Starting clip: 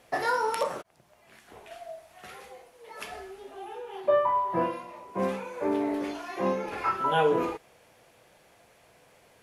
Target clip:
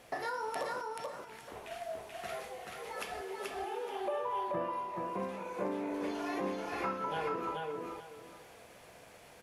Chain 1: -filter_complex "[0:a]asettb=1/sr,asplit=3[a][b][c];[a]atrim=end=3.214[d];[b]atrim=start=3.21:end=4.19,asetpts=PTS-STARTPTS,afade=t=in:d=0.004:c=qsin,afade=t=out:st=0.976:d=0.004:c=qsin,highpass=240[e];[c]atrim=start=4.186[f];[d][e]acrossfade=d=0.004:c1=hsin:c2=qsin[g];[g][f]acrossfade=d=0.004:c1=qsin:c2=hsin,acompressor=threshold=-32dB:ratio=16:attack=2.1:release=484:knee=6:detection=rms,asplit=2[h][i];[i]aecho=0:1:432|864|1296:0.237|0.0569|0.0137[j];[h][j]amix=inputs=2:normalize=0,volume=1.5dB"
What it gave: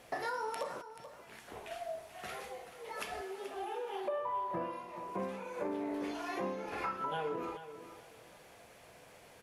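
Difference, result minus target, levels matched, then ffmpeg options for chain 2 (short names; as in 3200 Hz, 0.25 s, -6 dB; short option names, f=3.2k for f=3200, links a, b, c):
echo-to-direct -10 dB
-filter_complex "[0:a]asettb=1/sr,asplit=3[a][b][c];[a]atrim=end=3.214[d];[b]atrim=start=3.21:end=4.19,asetpts=PTS-STARTPTS,afade=t=in:d=0.004:c=qsin,afade=t=out:st=0.976:d=0.004:c=qsin,highpass=240[e];[c]atrim=start=4.186[f];[d][e]acrossfade=d=0.004:c1=hsin:c2=qsin[g];[g][f]acrossfade=d=0.004:c1=qsin:c2=hsin,acompressor=threshold=-32dB:ratio=16:attack=2.1:release=484:knee=6:detection=rms,asplit=2[h][i];[i]aecho=0:1:432|864|1296|1728:0.75|0.18|0.0432|0.0104[j];[h][j]amix=inputs=2:normalize=0,volume=1.5dB"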